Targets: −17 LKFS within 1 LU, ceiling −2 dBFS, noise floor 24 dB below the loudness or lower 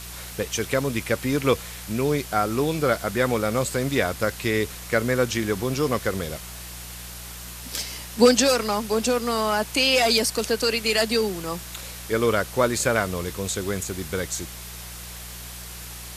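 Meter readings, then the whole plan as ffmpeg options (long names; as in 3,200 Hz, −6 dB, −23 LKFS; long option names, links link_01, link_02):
mains hum 60 Hz; hum harmonics up to 180 Hz; level of the hum −41 dBFS; background noise floor −38 dBFS; target noise floor −48 dBFS; integrated loudness −23.5 LKFS; sample peak −3.5 dBFS; target loudness −17.0 LKFS
→ -af "bandreject=frequency=60:width_type=h:width=4,bandreject=frequency=120:width_type=h:width=4,bandreject=frequency=180:width_type=h:width=4"
-af "afftdn=noise_reduction=10:noise_floor=-38"
-af "volume=6.5dB,alimiter=limit=-2dB:level=0:latency=1"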